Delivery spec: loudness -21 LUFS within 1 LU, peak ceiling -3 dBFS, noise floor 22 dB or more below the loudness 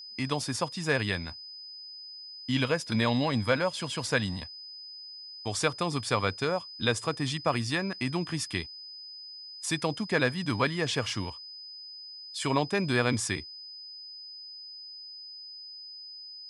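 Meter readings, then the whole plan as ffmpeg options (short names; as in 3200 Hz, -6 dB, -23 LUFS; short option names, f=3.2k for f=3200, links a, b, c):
steady tone 5000 Hz; tone level -42 dBFS; loudness -29.5 LUFS; peak -10.5 dBFS; loudness target -21.0 LUFS
-> -af "bandreject=f=5k:w=30"
-af "volume=8.5dB,alimiter=limit=-3dB:level=0:latency=1"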